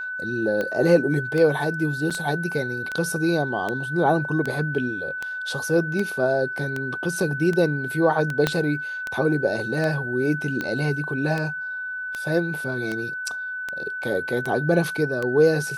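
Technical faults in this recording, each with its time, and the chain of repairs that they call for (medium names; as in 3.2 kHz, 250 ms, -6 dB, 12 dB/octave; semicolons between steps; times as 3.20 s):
tick 78 rpm -14 dBFS
whine 1.5 kHz -28 dBFS
2.10–2.11 s: dropout 6.6 ms
8.47 s: pop -6 dBFS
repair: de-click; band-stop 1.5 kHz, Q 30; interpolate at 2.10 s, 6.6 ms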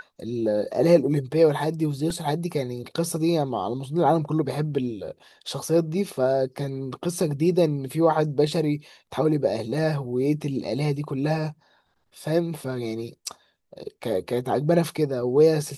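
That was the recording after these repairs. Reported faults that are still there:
8.47 s: pop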